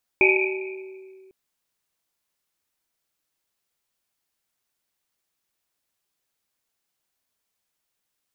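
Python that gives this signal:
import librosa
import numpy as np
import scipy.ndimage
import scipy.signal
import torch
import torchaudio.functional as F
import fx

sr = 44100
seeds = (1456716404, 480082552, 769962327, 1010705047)

y = fx.risset_drum(sr, seeds[0], length_s=1.1, hz=380.0, decay_s=2.22, noise_hz=2400.0, noise_width_hz=270.0, noise_pct=50)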